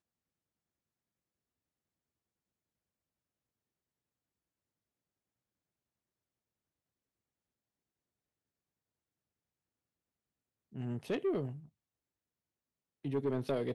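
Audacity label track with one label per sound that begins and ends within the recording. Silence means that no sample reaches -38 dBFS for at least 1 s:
10.760000	11.510000	sound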